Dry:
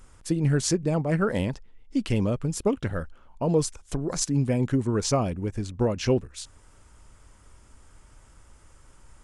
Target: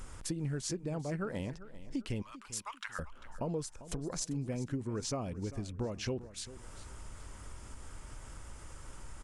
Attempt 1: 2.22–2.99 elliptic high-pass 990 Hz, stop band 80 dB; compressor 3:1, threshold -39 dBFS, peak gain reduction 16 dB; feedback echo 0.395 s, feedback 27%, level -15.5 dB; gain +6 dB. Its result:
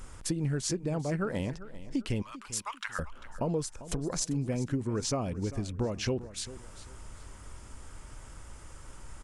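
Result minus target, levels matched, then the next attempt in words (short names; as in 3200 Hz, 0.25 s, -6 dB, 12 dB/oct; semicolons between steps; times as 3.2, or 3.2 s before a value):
compressor: peak gain reduction -5.5 dB
2.22–2.99 elliptic high-pass 990 Hz, stop band 80 dB; compressor 3:1, threshold -47 dBFS, peak gain reduction 21.5 dB; feedback echo 0.395 s, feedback 27%, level -15.5 dB; gain +6 dB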